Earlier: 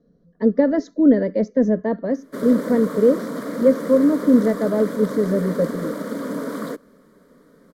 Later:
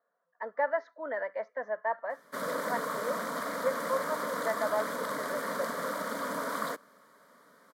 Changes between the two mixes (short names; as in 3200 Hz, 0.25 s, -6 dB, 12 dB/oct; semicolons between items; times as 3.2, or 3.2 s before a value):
speech: add Butterworth band-pass 1200 Hz, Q 0.86; master: add resonant low shelf 550 Hz -12 dB, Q 1.5